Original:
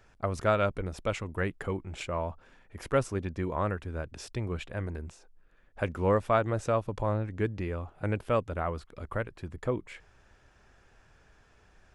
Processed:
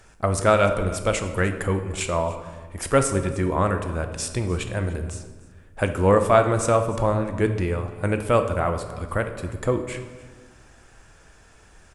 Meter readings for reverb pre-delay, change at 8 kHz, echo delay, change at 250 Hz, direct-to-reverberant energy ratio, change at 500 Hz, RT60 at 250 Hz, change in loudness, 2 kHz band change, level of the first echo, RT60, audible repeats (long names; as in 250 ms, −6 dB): 6 ms, +18.0 dB, 298 ms, +8.5 dB, 6.5 dB, +9.0 dB, 1.8 s, +8.5 dB, +8.5 dB, −21.0 dB, 1.4 s, 1